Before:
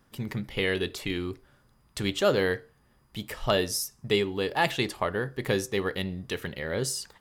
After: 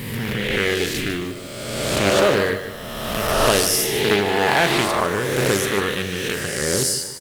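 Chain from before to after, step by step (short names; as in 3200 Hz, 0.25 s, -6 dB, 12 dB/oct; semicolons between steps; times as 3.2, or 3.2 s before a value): spectral swells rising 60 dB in 1.88 s; bit-crush 9-bit; high shelf 9200 Hz +9.5 dB; doubler 40 ms -11 dB; feedback echo 0.15 s, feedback 41%, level -10 dB; Doppler distortion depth 0.33 ms; gain +3 dB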